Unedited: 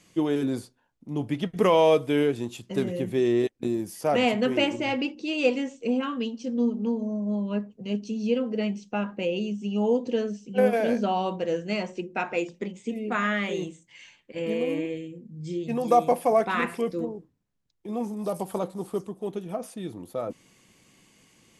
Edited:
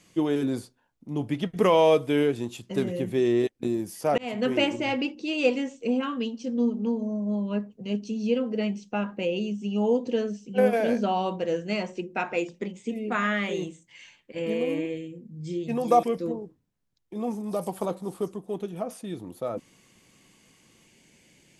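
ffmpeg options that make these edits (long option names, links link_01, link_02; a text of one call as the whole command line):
ffmpeg -i in.wav -filter_complex "[0:a]asplit=3[link_01][link_02][link_03];[link_01]atrim=end=4.18,asetpts=PTS-STARTPTS,afade=type=out:start_time=4.176:duration=0.004:curve=hsin[link_04];[link_02]atrim=start=4.18:end=16.032,asetpts=PTS-STARTPTS,afade=type=in:duration=0.31[link_05];[link_03]atrim=start=16.758[link_06];[link_04][link_05]concat=n=2:v=0:a=1[link_07];[link_07][link_06]acrossfade=duration=0.004:curve1=hsin:curve2=hsin" out.wav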